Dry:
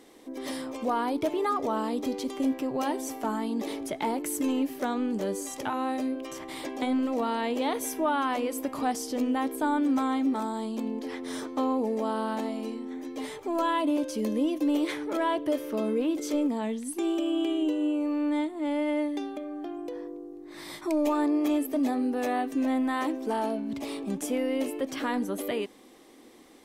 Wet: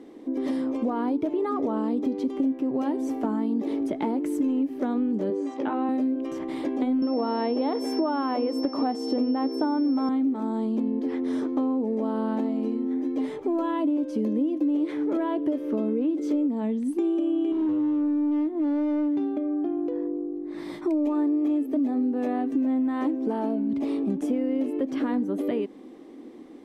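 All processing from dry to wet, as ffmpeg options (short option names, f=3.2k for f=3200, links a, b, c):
-filter_complex "[0:a]asettb=1/sr,asplit=3[a][b][c];[a]atrim=end=5.304[d];[b]atrim=start=5.3:end=5.89,asetpts=PTS-STARTPTS,afade=t=in:d=0.004:c=qsin,afade=t=out:st=0.586:d=0.004:c=qsin,highpass=230,lowpass=3.8k,asplit=2[e][f];[f]adelay=18,volume=-7.5dB[g];[e][g]amix=inputs=2:normalize=0,atrim=end_sample=26019[h];[c]atrim=start=5.886[i];[d][h]acrossfade=d=0.004:c1=hsin:c2=qsin[j];[j][i]acrossfade=d=0.004:c1=qsin:c2=hsin,asettb=1/sr,asplit=3[k][l][m];[k]atrim=end=7.024[n];[l]atrim=start=7.02:end=10.09,asetpts=PTS-STARTPTS,afade=t=in:d=0.004:c=qsin,afade=t=out:st=3.066:d=0.004:c=qsin,highpass=200,equalizer=f=730:t=o:w=2.5:g=7,aeval=exprs='val(0)+0.0447*sin(2*PI*5400*n/s)':c=same[o];[m]atrim=start=10.086[p];[n][o]acrossfade=d=0.004:c1=hsin:c2=qsin[q];[q][p]acrossfade=d=0.004:c1=qsin:c2=hsin,asettb=1/sr,asplit=3[r][s][t];[r]atrim=end=17.524[u];[s]atrim=start=17.52:end=20.19,asetpts=PTS-STARTPTS,afade=t=in:d=0.004:c=qsin,afade=t=out:st=2.666:d=0.004:c=qsin,lowpass=f=3.7k:p=1,asoftclip=type=hard:threshold=-28.5dB[v];[t]atrim=start=20.186[w];[u][v]acrossfade=d=0.004:c1=hsin:c2=qsin[x];[x][w]acrossfade=d=0.004:c1=qsin:c2=hsin,lowpass=f=2.1k:p=1,equalizer=f=280:w=0.85:g=12,acompressor=threshold=-23dB:ratio=5"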